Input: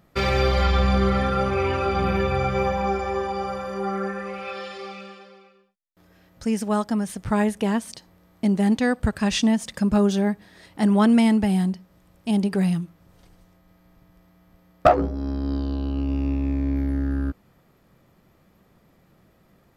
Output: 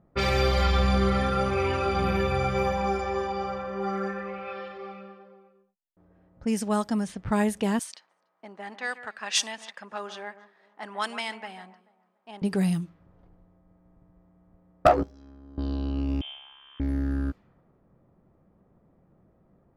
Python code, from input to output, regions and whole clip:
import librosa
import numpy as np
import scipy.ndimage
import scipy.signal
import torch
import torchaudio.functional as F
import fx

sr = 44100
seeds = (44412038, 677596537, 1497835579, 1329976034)

y = fx.chain(x, sr, fx.highpass(hz=960.0, slope=12),
    fx.high_shelf(hz=5400.0, db=7.0),
    fx.echo_alternate(ms=145, hz=2400.0, feedback_pct=52, wet_db=-13), at=(7.79, 12.42))
y = fx.chain(y, sr, fx.pre_emphasis(coefficient=0.9),
    fx.resample_linear(factor=4), at=(15.03, 15.58))
y = fx.chain(y, sr, fx.highpass(hz=1100.0, slope=6),
    fx.air_absorb(metres=140.0),
    fx.freq_invert(carrier_hz=3400), at=(16.21, 16.8))
y = fx.env_lowpass(y, sr, base_hz=860.0, full_db=-19.0)
y = fx.high_shelf(y, sr, hz=5500.0, db=6.5)
y = y * 10.0 ** (-3.0 / 20.0)